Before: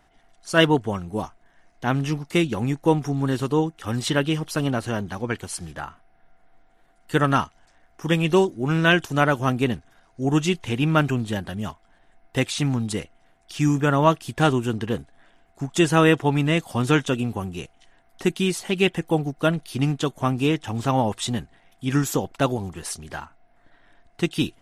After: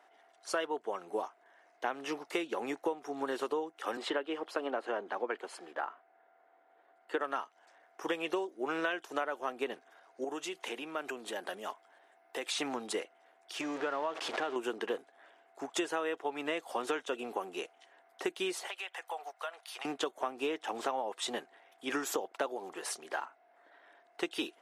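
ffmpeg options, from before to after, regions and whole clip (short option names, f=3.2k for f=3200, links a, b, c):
-filter_complex "[0:a]asettb=1/sr,asplit=3[a][b][c];[a]atrim=end=3.974[d];[b]atrim=start=3.97:end=7.21,asetpts=PTS-STARTPTS,afade=t=in:d=0.004:c=qsin,afade=t=out:st=3.236:d=0.004:c=qsin,highpass=f=190:w=0.5412,highpass=f=190:w=1.3066,aemphasis=mode=reproduction:type=75kf,bandreject=f=5.8k:w=13[e];[c]atrim=start=7.206[f];[d][e]acrossfade=d=0.004:c1=hsin:c2=qsin[g];[g][f]acrossfade=d=0.004:c1=qsin:c2=hsin,asettb=1/sr,asplit=3[h][i][j];[h]atrim=end=10.244[k];[i]atrim=start=10.24:end=12.49,asetpts=PTS-STARTPTS,afade=t=in:d=0.004:c=qsin,afade=t=out:st=2.246:d=0.004:c=qsin,highshelf=f=6.9k:g=7,acompressor=threshold=-28dB:ratio=10:attack=3.2:release=140:knee=1:detection=peak,highpass=110[l];[j]atrim=start=12.486[m];[k][l]acrossfade=d=0.004:c1=hsin:c2=qsin[n];[n][m]acrossfade=d=0.004:c1=qsin:c2=hsin,asettb=1/sr,asplit=3[o][p][q];[o]atrim=end=13.614[r];[p]atrim=start=13.61:end=14.56,asetpts=PTS-STARTPTS,afade=t=in:d=0.004:c=qsin,afade=t=out:st=0.946:d=0.004:c=qsin,aeval=exprs='val(0)+0.5*0.0631*sgn(val(0))':c=same,lowpass=5.2k,acompressor=threshold=-27dB:ratio=2.5:attack=3.2:release=140:knee=1:detection=peak[s];[q]atrim=start=14.556[t];[r][s]acrossfade=d=0.004:c1=hsin:c2=qsin[u];[u][t]acrossfade=d=0.004:c1=qsin:c2=hsin,asettb=1/sr,asplit=3[v][w][x];[v]atrim=end=18.674[y];[w]atrim=start=18.67:end=19.85,asetpts=PTS-STARTPTS,afade=t=in:d=0.004:c=qsin,afade=t=out:st=1.176:d=0.004:c=qsin,highpass=f=710:w=0.5412,highpass=f=710:w=1.3066,acompressor=threshold=-35dB:ratio=5:attack=3.2:release=140:knee=1:detection=peak[z];[x]atrim=start=19.846[aa];[y][z]acrossfade=d=0.004:c1=hsin:c2=qsin[ab];[ab][aa]acrossfade=d=0.004:c1=qsin:c2=hsin,highpass=f=400:w=0.5412,highpass=f=400:w=1.3066,highshelf=f=2.8k:g=-9.5,acompressor=threshold=-31dB:ratio=16,volume=1dB"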